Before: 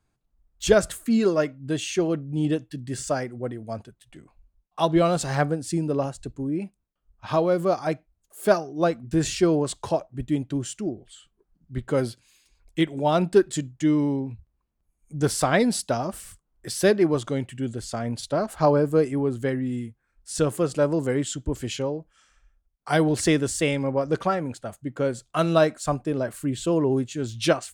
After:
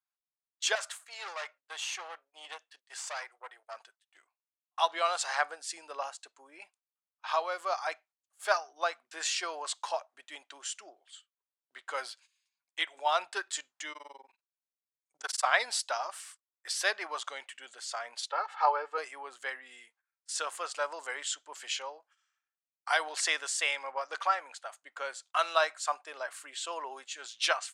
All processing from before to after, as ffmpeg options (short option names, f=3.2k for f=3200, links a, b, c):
-filter_complex "[0:a]asettb=1/sr,asplit=3[a][b][c];[a]atrim=end=0.754[d];[b]atrim=start=0.75:end=3.77,asetpts=PTS-STARTPTS,afade=t=in:d=0.004:c=qsin,afade=t=out:st=3.016:d=0.004:c=qsin,highpass=f=390:w=0.5412,highpass=f=390:w=1.3066,aeval=exprs='(tanh(25.1*val(0)+0.6)-tanh(0.6))/25.1':c=same[e];[c]atrim=start=3.766[f];[d][e]acrossfade=d=0.004:c1=hsin:c2=qsin[g];[g][f]acrossfade=d=0.004:c1=qsin:c2=hsin,asettb=1/sr,asplit=3[h][i][j];[h]atrim=end=13.924[k];[i]atrim=start=13.92:end=15.46,asetpts=PTS-STARTPTS,afade=t=in:d=0.004:c=qsin,afade=t=out:st=1.536:d=0.004:c=qsin,aecho=1:1:5.3:0.33,atrim=end_sample=67914,tremolo=f=21:d=1[l];[j]atrim=start=15.456[m];[k][l]acrossfade=d=0.004:c1=hsin:c2=qsin[n];[n][m]acrossfade=d=0.004:c1=qsin:c2=hsin,asettb=1/sr,asplit=3[o][p][q];[o]atrim=end=18.304[r];[p]atrim=start=18.3:end=18.98,asetpts=PTS-STARTPTS,afade=t=in:d=0.004:c=qsin,afade=t=out:st=0.676:d=0.004:c=qsin,highpass=340,lowpass=2.9k,aecho=1:1:2.3:0.87,atrim=end_sample=29988[s];[q]atrim=start=18.976[t];[r][s]acrossfade=d=0.004:c1=hsin:c2=qsin[u];[u][t]acrossfade=d=0.004:c1=qsin:c2=hsin,lowpass=7.6k,agate=range=-17dB:threshold=-48dB:ratio=16:detection=peak,highpass=f=850:w=0.5412,highpass=f=850:w=1.3066"